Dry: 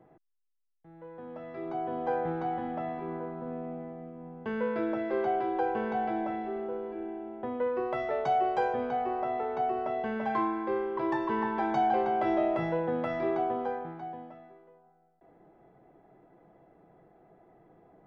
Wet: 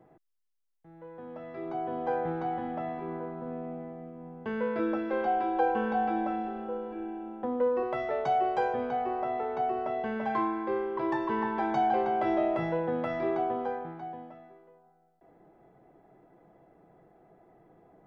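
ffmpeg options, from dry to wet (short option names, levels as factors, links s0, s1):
-filter_complex "[0:a]asettb=1/sr,asplit=3[s0][s1][s2];[s0]atrim=end=4.794[s3];[s1]atrim=start=4.79:end=7.83,asetpts=PTS-STARTPTS,afade=t=in:d=0.004:c=qsin,afade=t=out:st=3.036:d=0.004:c=qsin,aecho=1:1:3.8:0.65,atrim=end_sample=134064[s4];[s2]atrim=start=7.826[s5];[s3][s4]acrossfade=d=0.004:c1=hsin:c2=qsin[s6];[s6][s5]acrossfade=d=0.004:c1=qsin:c2=hsin"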